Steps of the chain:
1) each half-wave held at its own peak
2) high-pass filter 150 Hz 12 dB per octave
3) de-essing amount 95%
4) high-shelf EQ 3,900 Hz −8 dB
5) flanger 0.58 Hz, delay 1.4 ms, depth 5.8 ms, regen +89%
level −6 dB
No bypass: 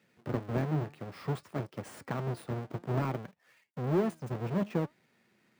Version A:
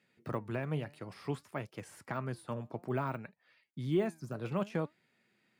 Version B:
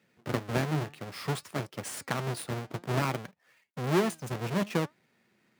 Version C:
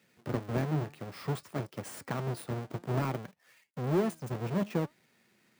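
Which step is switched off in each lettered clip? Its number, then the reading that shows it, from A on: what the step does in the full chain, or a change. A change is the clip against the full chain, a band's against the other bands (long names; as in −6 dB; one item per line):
1, distortion level −4 dB
3, change in crest factor +3.0 dB
4, 8 kHz band +6.5 dB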